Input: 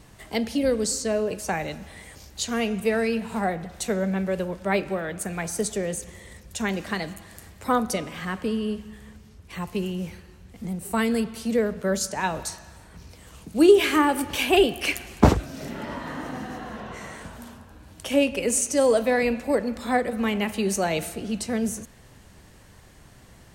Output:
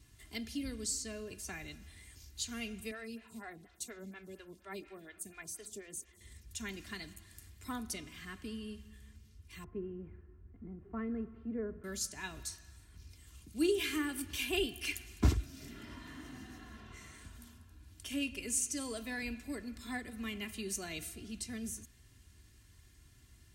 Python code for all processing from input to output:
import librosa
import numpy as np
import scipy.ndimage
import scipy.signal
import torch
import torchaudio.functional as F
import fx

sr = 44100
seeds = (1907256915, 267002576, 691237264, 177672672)

y = fx.chain(x, sr, fx.low_shelf(hz=110.0, db=-8.5),
    fx.stagger_phaser(hz=4.2), at=(2.91, 6.21))
y = fx.chain(y, sr, fx.lowpass(hz=1500.0, slope=24),
    fx.peak_eq(hz=410.0, db=6.0, octaves=1.3), at=(9.64, 11.84))
y = scipy.signal.sosfilt(scipy.signal.butter(2, 47.0, 'highpass', fs=sr, output='sos'), y)
y = fx.tone_stack(y, sr, knobs='6-0-2')
y = y + 0.58 * np.pad(y, (int(2.9 * sr / 1000.0), 0))[:len(y)]
y = F.gain(torch.from_numpy(y), 4.5).numpy()